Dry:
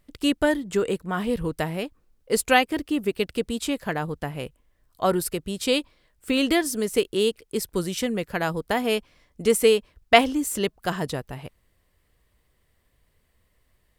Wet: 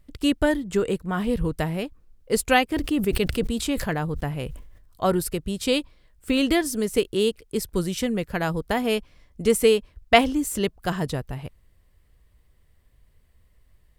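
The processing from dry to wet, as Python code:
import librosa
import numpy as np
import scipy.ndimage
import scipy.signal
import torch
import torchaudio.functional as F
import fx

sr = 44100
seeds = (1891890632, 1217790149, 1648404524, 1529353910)

y = fx.low_shelf(x, sr, hz=130.0, db=11.5)
y = fx.sustainer(y, sr, db_per_s=57.0, at=(2.73, 5.07))
y = y * librosa.db_to_amplitude(-1.0)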